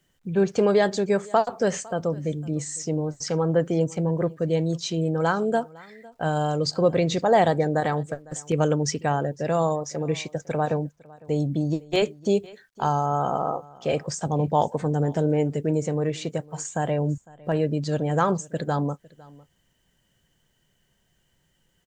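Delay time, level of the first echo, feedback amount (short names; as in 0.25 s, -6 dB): 0.505 s, -23.0 dB, no steady repeat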